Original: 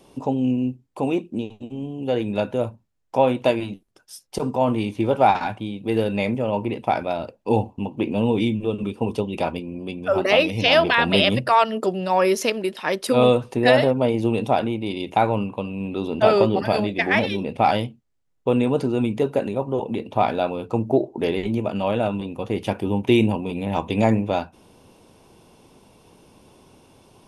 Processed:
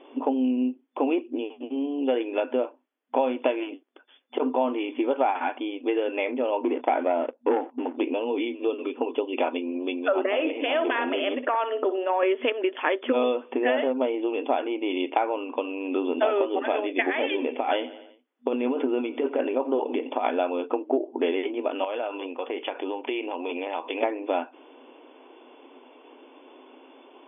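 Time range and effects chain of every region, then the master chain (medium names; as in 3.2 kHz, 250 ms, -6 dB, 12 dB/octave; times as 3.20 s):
6.64–7.97 s: low-pass 1.1 kHz 6 dB/octave + waveshaping leveller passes 2
10.26–12.23 s: compression, threshold -19 dBFS + tape spacing loss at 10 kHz 22 dB + flutter echo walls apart 10.4 m, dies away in 0.31 s
17.04–20.30 s: compressor with a negative ratio -21 dBFS, ratio -0.5 + feedback delay 87 ms, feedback 51%, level -19 dB
21.84–24.03 s: high-pass 410 Hz + compression, threshold -29 dBFS
whole clip: compression, threshold -24 dBFS; FFT band-pass 240–3500 Hz; trim +4 dB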